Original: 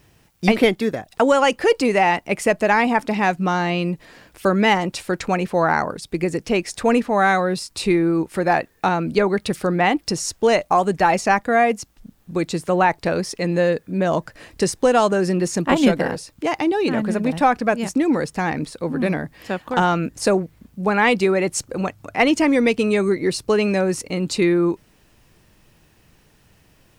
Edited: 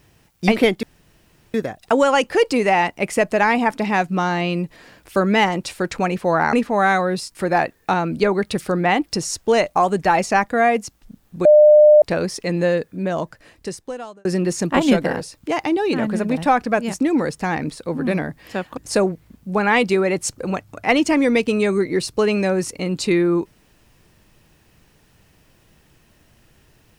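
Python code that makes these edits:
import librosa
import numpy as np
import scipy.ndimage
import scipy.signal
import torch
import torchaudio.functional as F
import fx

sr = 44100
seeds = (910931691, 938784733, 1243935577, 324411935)

y = fx.edit(x, sr, fx.insert_room_tone(at_s=0.83, length_s=0.71),
    fx.cut(start_s=5.82, length_s=1.1),
    fx.cut(start_s=7.74, length_s=0.56),
    fx.bleep(start_s=12.4, length_s=0.57, hz=602.0, db=-6.0),
    fx.fade_out_span(start_s=13.58, length_s=1.62),
    fx.cut(start_s=19.72, length_s=0.36), tone=tone)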